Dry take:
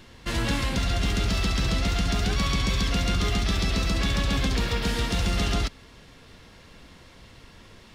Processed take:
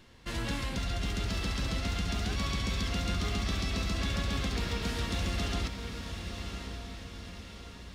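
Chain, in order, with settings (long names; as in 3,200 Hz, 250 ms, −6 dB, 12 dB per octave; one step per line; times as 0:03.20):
feedback delay with all-pass diffusion 1,072 ms, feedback 52%, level −7 dB
level −8 dB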